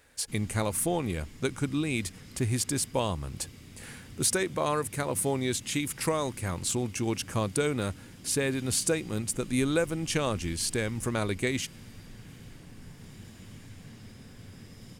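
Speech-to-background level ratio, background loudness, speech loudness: 18.5 dB, −48.5 LKFS, −30.0 LKFS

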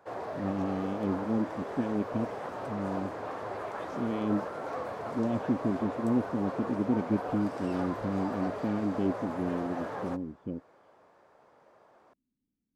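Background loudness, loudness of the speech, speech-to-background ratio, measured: −38.0 LKFS, −33.0 LKFS, 5.0 dB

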